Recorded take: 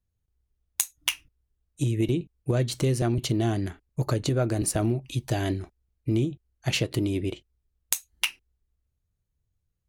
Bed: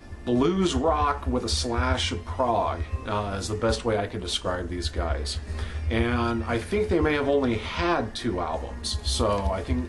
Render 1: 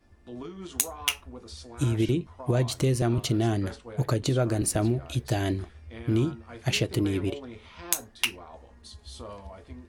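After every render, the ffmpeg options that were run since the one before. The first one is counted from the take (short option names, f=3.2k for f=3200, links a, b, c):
-filter_complex "[1:a]volume=-17.5dB[a];[0:a][a]amix=inputs=2:normalize=0"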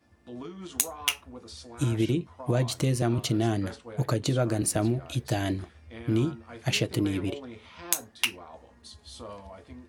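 -af "highpass=94,bandreject=f=390:w=12"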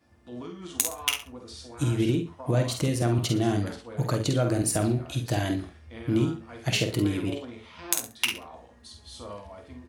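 -filter_complex "[0:a]asplit=2[a][b];[b]adelay=49,volume=-6dB[c];[a][c]amix=inputs=2:normalize=0,aecho=1:1:67|134:0.211|0.0423"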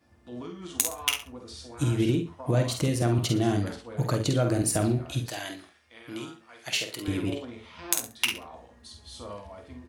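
-filter_complex "[0:a]asettb=1/sr,asplit=3[a][b][c];[a]atrim=end=5.294[d];[b]atrim=start=5.29:end=7.08,asetpts=PTS-STARTPTS,afade=t=in:d=0.004:c=qsin,afade=t=out:st=1.786:d=0.004:c=qsin,highpass=f=1.4k:p=1[e];[c]atrim=start=7.076[f];[d][e]acrossfade=d=0.004:c1=hsin:c2=qsin[g];[g][f]acrossfade=d=0.004:c1=qsin:c2=hsin"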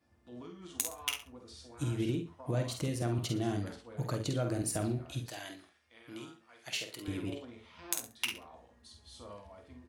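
-af "volume=-8.5dB"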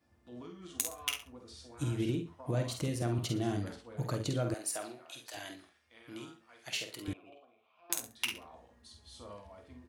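-filter_complex "[0:a]asettb=1/sr,asplit=3[a][b][c];[a]atrim=end=0.614[d];[b]atrim=start=0.61:end=1.22,asetpts=PTS-STARTPTS,afade=t=in:d=0.004:c=qsin,afade=t=out:st=0.606:d=0.004:c=qsin,asuperstop=centerf=910:order=4:qfactor=7.3[e];[c]atrim=start=1.216[f];[d][e]acrossfade=d=0.004:c1=hsin:c2=qsin[g];[g][f]acrossfade=d=0.004:c1=qsin:c2=hsin,asettb=1/sr,asplit=3[h][i][j];[h]atrim=end=4.544[k];[i]atrim=start=4.54:end=5.34,asetpts=PTS-STARTPTS,afade=t=in:d=0.004:c=qsin,afade=t=out:st=0.796:d=0.004:c=qsin,highpass=640[l];[j]atrim=start=5.336[m];[k][l]acrossfade=d=0.004:c1=hsin:c2=qsin[n];[n][m]acrossfade=d=0.004:c1=qsin:c2=hsin,asettb=1/sr,asplit=3[o][p][q];[o]atrim=end=7.134[r];[p]atrim=start=7.13:end=7.9,asetpts=PTS-STARTPTS,afade=t=in:d=0.004:c=qsin,afade=t=out:st=0.766:d=0.004:c=qsin,asplit=3[s][t][u];[s]bandpass=f=730:t=q:w=8,volume=0dB[v];[t]bandpass=f=1.09k:t=q:w=8,volume=-6dB[w];[u]bandpass=f=2.44k:t=q:w=8,volume=-9dB[x];[v][w][x]amix=inputs=3:normalize=0[y];[q]atrim=start=7.896[z];[r][y]acrossfade=d=0.004:c1=hsin:c2=qsin[aa];[aa][z]acrossfade=d=0.004:c1=qsin:c2=hsin"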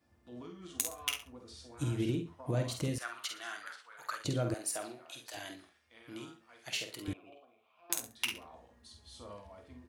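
-filter_complex "[0:a]asettb=1/sr,asplit=3[a][b][c];[a]atrim=end=2.984[d];[b]atrim=start=2.98:end=4.25,asetpts=PTS-STARTPTS,afade=t=in:d=0.004:c=qsin,afade=t=out:st=1.266:d=0.004:c=qsin,highpass=f=1.4k:t=q:w=2.8[e];[c]atrim=start=4.246[f];[d][e]acrossfade=d=0.004:c1=hsin:c2=qsin[g];[g][f]acrossfade=d=0.004:c1=qsin:c2=hsin"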